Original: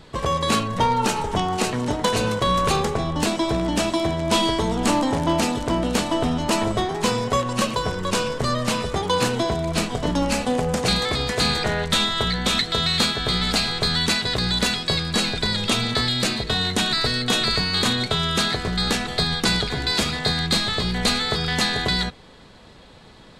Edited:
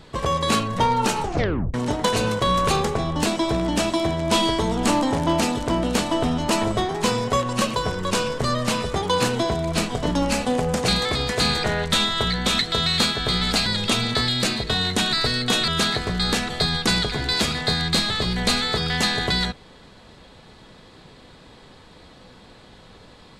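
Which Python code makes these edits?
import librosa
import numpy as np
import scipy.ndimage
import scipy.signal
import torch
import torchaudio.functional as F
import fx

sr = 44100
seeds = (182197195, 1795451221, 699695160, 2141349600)

y = fx.edit(x, sr, fx.tape_stop(start_s=1.23, length_s=0.51),
    fx.cut(start_s=13.66, length_s=1.8),
    fx.cut(start_s=17.48, length_s=0.78), tone=tone)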